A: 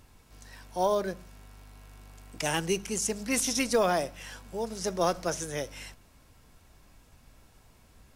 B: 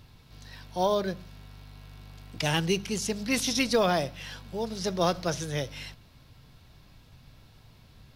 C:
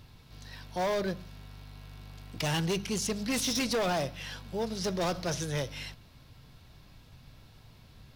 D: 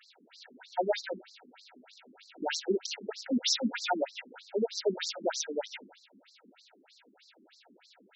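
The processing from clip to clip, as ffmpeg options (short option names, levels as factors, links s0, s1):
-af "equalizer=f=125:t=o:w=1:g=11,equalizer=f=4000:t=o:w=1:g=10,equalizer=f=8000:t=o:w=1:g=-9"
-af "volume=20,asoftclip=hard,volume=0.0501"
-af "asuperstop=centerf=1100:order=8:qfactor=3.9,afftfilt=real='re*between(b*sr/1024,270*pow(5700/270,0.5+0.5*sin(2*PI*3.2*pts/sr))/1.41,270*pow(5700/270,0.5+0.5*sin(2*PI*3.2*pts/sr))*1.41)':imag='im*between(b*sr/1024,270*pow(5700/270,0.5+0.5*sin(2*PI*3.2*pts/sr))/1.41,270*pow(5700/270,0.5+0.5*sin(2*PI*3.2*pts/sr))*1.41)':win_size=1024:overlap=0.75,volume=2.37"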